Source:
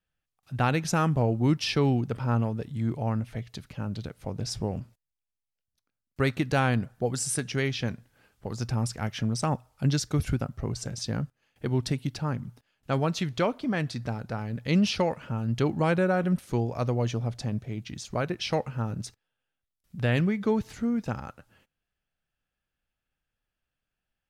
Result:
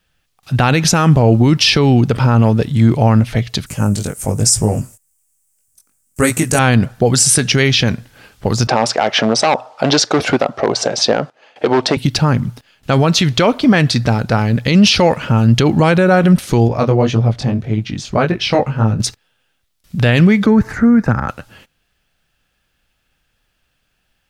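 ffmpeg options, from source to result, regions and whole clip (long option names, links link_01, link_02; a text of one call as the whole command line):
ffmpeg -i in.wav -filter_complex "[0:a]asettb=1/sr,asplit=3[link_01][link_02][link_03];[link_01]atrim=end=3.664[link_04];[link_02]atrim=start=3.66:end=6.59,asetpts=PTS-STARTPTS,afade=type=in:duration=0.004:curve=qsin,afade=type=out:start_time=2.926:duration=0.004:curve=qsin,highshelf=frequency=5700:width_type=q:width=3:gain=14,flanger=delay=18:depth=3:speed=1.1[link_05];[link_03]atrim=start=6.586[link_06];[link_04][link_05]acrossfade=duration=0.004:curve1=hsin:curve2=qsin[link_07];[link_07][link_06]acrossfade=duration=0.004:curve1=qsin:curve2=hsin,asettb=1/sr,asplit=3[link_08][link_09][link_10];[link_08]atrim=end=8.674[link_11];[link_09]atrim=start=8.67:end=11.97,asetpts=PTS-STARTPTS,afade=type=in:duration=0.004:curve=qsin,afade=type=out:start_time=3.296:duration=0.004:curve=qsin,equalizer=frequency=670:width_type=o:width=1.6:gain=13.5,asoftclip=type=hard:threshold=-19dB,highpass=320,lowpass=5500[link_12];[link_10]atrim=start=11.966[link_13];[link_11][link_12]acrossfade=duration=0.004:curve1=hsin:curve2=qsin[link_14];[link_14][link_13]acrossfade=duration=0.004:curve1=qsin:curve2=hsin,asettb=1/sr,asplit=3[link_15][link_16][link_17];[link_15]atrim=end=16.684[link_18];[link_16]atrim=start=16.68:end=19,asetpts=PTS-STARTPTS,afade=type=in:duration=0.004:curve=qsin,afade=type=out:start_time=2.316:duration=0.004:curve=qsin,highshelf=frequency=3300:gain=-11,flanger=delay=18:depth=4.4:speed=1.8[link_19];[link_17]atrim=start=18.996[link_20];[link_18][link_19]acrossfade=duration=0.004:curve1=hsin:curve2=qsin[link_21];[link_21][link_20]acrossfade=duration=0.004:curve1=qsin:curve2=hsin,asettb=1/sr,asplit=3[link_22][link_23][link_24];[link_22]atrim=end=20.464[link_25];[link_23]atrim=start=20.46:end=21.29,asetpts=PTS-STARTPTS,afade=type=in:duration=0.004:curve=qsin,afade=type=out:start_time=0.826:duration=0.004:curve=qsin,highshelf=frequency=2300:width_type=q:width=3:gain=-11.5,acrossover=split=270|3000[link_26][link_27][link_28];[link_27]acompressor=threshold=-34dB:ratio=6:attack=3.2:release=140:knee=2.83:detection=peak[link_29];[link_26][link_29][link_28]amix=inputs=3:normalize=0[link_30];[link_24]atrim=start=21.286[link_31];[link_25][link_30]acrossfade=duration=0.004:curve1=hsin:curve2=qsin[link_32];[link_32][link_31]acrossfade=duration=0.004:curve1=qsin:curve2=hsin,equalizer=frequency=4000:width_type=o:width=1.7:gain=4.5,alimiter=level_in=19.5dB:limit=-1dB:release=50:level=0:latency=1,volume=-1dB" out.wav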